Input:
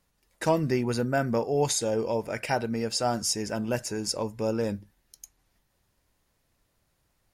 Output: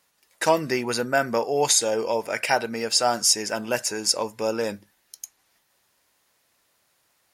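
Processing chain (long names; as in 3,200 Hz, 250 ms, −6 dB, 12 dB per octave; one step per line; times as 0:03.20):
high-pass filter 850 Hz 6 dB per octave
level +9 dB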